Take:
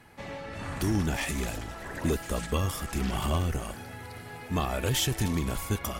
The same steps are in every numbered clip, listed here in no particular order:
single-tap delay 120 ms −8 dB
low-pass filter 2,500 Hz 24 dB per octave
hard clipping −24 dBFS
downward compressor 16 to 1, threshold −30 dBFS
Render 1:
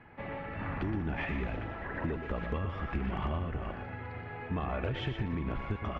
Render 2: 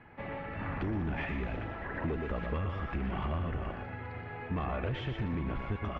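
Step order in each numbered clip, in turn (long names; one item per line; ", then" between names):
low-pass filter, then downward compressor, then single-tap delay, then hard clipping
single-tap delay, then hard clipping, then downward compressor, then low-pass filter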